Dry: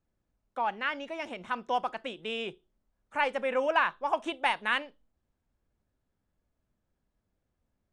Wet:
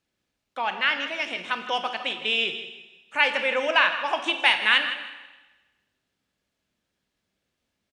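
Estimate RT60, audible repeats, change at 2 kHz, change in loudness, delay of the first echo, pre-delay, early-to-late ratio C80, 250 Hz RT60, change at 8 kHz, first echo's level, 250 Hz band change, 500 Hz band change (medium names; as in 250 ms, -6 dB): 1.2 s, 3, +10.0 dB, +7.5 dB, 160 ms, 24 ms, 9.5 dB, 1.2 s, no reading, -13.0 dB, +1.5 dB, +2.0 dB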